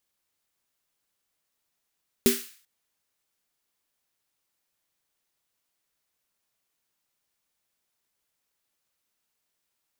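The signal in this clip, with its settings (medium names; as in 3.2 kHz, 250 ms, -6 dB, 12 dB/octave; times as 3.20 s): snare drum length 0.39 s, tones 240 Hz, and 390 Hz, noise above 1.5 kHz, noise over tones -5.5 dB, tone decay 0.23 s, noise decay 0.49 s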